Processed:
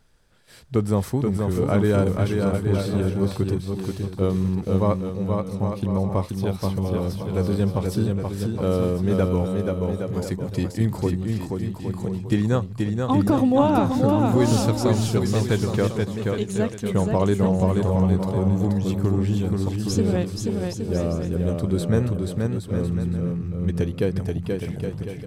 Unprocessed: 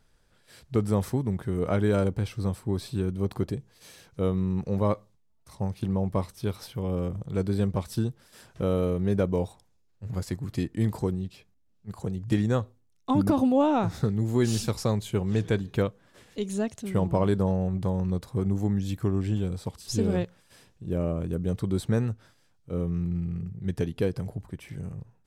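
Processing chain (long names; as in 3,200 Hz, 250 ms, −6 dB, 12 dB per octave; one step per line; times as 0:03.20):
bouncing-ball delay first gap 480 ms, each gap 0.7×, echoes 5
level +3.5 dB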